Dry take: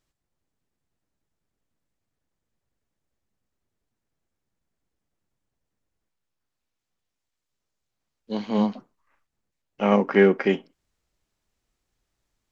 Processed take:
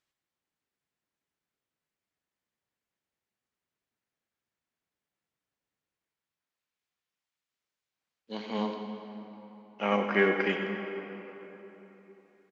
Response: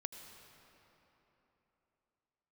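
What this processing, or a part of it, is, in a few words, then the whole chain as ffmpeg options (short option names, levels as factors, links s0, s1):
PA in a hall: -filter_complex "[0:a]highpass=f=180:p=1,equalizer=f=2300:t=o:w=2.5:g=8,aecho=1:1:92:0.282[s0];[1:a]atrim=start_sample=2205[s1];[s0][s1]afir=irnorm=-1:irlink=0,volume=0.501"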